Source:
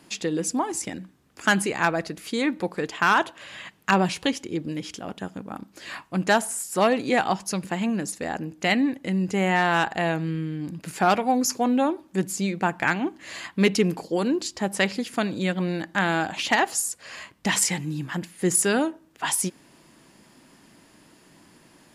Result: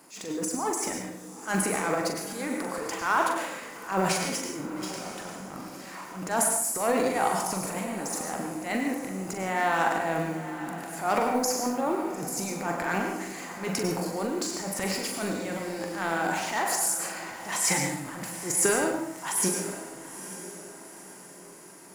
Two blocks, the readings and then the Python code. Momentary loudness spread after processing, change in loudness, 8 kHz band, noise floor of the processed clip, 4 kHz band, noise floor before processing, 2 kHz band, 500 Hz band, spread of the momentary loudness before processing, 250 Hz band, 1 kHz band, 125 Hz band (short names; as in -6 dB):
14 LU, -4.0 dB, +0.5 dB, -46 dBFS, -5.5 dB, -56 dBFS, -5.5 dB, -3.0 dB, 12 LU, -6.5 dB, -3.0 dB, -7.5 dB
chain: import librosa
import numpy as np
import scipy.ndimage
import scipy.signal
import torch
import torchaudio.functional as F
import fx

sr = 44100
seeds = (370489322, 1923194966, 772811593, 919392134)

p1 = fx.law_mismatch(x, sr, coded='mu')
p2 = fx.highpass(p1, sr, hz=900.0, slope=6)
p3 = fx.peak_eq(p2, sr, hz=3300.0, db=-15.0, octaves=1.3)
p4 = fx.notch(p3, sr, hz=1700.0, q=15.0)
p5 = fx.transient(p4, sr, attack_db=-10, sustain_db=11)
p6 = fx.doubler(p5, sr, ms=42.0, db=-6.5)
p7 = p6 + fx.echo_diffused(p6, sr, ms=900, feedback_pct=46, wet_db=-13.0, dry=0)
y = fx.rev_plate(p7, sr, seeds[0], rt60_s=0.58, hf_ratio=0.8, predelay_ms=85, drr_db=4.0)